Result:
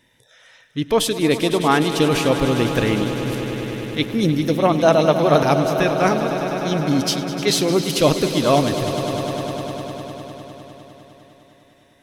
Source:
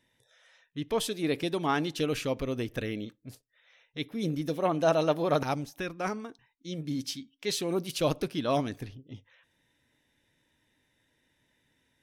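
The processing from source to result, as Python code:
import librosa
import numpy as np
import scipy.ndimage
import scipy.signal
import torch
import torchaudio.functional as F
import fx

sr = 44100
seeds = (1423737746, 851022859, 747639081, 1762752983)

p1 = fx.rider(x, sr, range_db=10, speed_s=0.5)
p2 = x + F.gain(torch.from_numpy(p1), -2.0).numpy()
p3 = fx.echo_swell(p2, sr, ms=101, loudest=5, wet_db=-13.5)
y = F.gain(torch.from_numpy(p3), 6.5).numpy()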